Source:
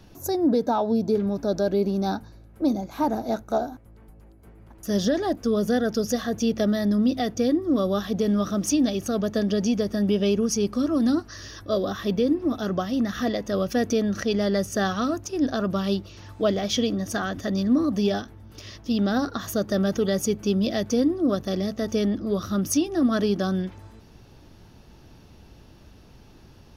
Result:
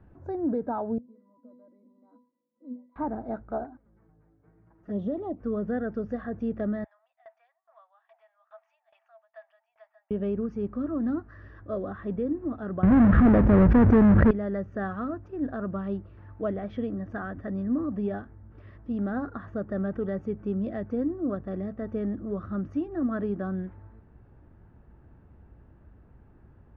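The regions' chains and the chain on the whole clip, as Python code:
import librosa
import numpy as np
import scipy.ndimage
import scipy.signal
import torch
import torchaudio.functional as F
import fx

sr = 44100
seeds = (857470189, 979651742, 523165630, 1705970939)

y = fx.chain(x, sr, fx.brickwall_highpass(low_hz=170.0),
    fx.octave_resonator(note='B', decay_s=0.33), at=(0.98, 2.96))
y = fx.chain(y, sr, fx.highpass(hz=90.0, slope=12),
    fx.env_flanger(rest_ms=7.5, full_db=-22.0), at=(3.64, 5.4))
y = fx.chain(y, sr, fx.cheby_ripple_highpass(hz=640.0, ripple_db=9),
    fx.tremolo_decay(direction='decaying', hz=2.4, depth_db=22), at=(6.84, 10.11))
y = fx.chain(y, sr, fx.halfwave_hold(),
    fx.low_shelf(hz=370.0, db=11.5),
    fx.env_flatten(amount_pct=70), at=(12.83, 14.31))
y = scipy.signal.sosfilt(scipy.signal.cheby1(3, 1.0, 1700.0, 'lowpass', fs=sr, output='sos'), y)
y = fx.peak_eq(y, sr, hz=64.0, db=6.0, octaves=1.7)
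y = y * 10.0 ** (-7.0 / 20.0)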